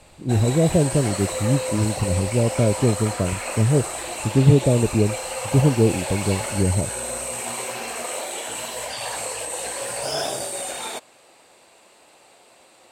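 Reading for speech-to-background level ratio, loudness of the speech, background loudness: 7.0 dB, -21.0 LUFS, -28.0 LUFS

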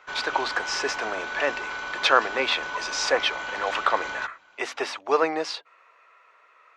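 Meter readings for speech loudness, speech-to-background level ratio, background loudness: -26.5 LUFS, 5.5 dB, -32.0 LUFS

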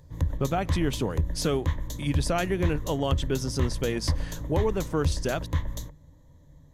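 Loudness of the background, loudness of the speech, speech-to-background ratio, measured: -32.0 LUFS, -29.5 LUFS, 2.5 dB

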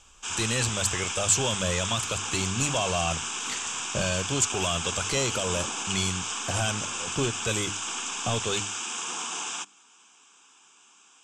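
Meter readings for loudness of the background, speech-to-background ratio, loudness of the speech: -30.0 LUFS, 1.5 dB, -28.5 LUFS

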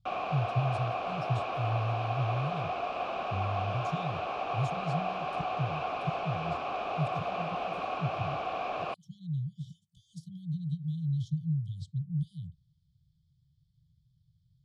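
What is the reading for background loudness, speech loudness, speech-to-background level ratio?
-34.5 LUFS, -36.5 LUFS, -2.0 dB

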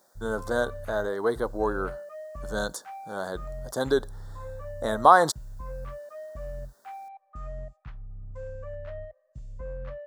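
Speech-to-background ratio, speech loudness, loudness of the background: 15.0 dB, -26.5 LUFS, -41.5 LUFS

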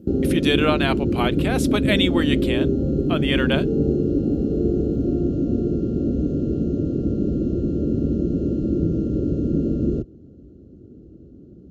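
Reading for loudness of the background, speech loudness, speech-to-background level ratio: -22.0 LUFS, -24.0 LUFS, -2.0 dB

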